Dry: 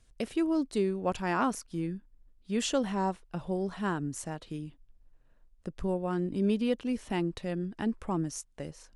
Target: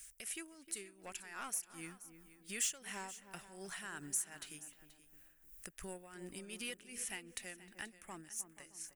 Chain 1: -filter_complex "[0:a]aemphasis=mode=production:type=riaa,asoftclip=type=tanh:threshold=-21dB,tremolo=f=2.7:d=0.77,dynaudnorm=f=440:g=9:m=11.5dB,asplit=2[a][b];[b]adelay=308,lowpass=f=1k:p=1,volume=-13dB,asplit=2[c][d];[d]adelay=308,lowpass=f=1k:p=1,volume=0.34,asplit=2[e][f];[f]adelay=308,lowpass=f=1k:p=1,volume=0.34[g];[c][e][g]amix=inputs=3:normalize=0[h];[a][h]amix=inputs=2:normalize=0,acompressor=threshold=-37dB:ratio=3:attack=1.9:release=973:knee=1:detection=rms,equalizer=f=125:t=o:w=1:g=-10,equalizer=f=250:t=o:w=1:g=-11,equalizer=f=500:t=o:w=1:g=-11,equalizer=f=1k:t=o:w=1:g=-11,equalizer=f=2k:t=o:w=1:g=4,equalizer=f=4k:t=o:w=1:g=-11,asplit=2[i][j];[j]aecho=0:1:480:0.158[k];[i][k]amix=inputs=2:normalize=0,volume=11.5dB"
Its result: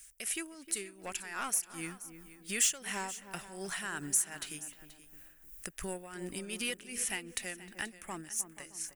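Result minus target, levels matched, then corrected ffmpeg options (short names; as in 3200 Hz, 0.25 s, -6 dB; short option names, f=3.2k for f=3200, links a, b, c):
compressor: peak gain reduction -8 dB
-filter_complex "[0:a]aemphasis=mode=production:type=riaa,asoftclip=type=tanh:threshold=-21dB,tremolo=f=2.7:d=0.77,dynaudnorm=f=440:g=9:m=11.5dB,asplit=2[a][b];[b]adelay=308,lowpass=f=1k:p=1,volume=-13dB,asplit=2[c][d];[d]adelay=308,lowpass=f=1k:p=1,volume=0.34,asplit=2[e][f];[f]adelay=308,lowpass=f=1k:p=1,volume=0.34[g];[c][e][g]amix=inputs=3:normalize=0[h];[a][h]amix=inputs=2:normalize=0,acompressor=threshold=-49dB:ratio=3:attack=1.9:release=973:knee=1:detection=rms,equalizer=f=125:t=o:w=1:g=-10,equalizer=f=250:t=o:w=1:g=-11,equalizer=f=500:t=o:w=1:g=-11,equalizer=f=1k:t=o:w=1:g=-11,equalizer=f=2k:t=o:w=1:g=4,equalizer=f=4k:t=o:w=1:g=-11,asplit=2[i][j];[j]aecho=0:1:480:0.158[k];[i][k]amix=inputs=2:normalize=0,volume=11.5dB"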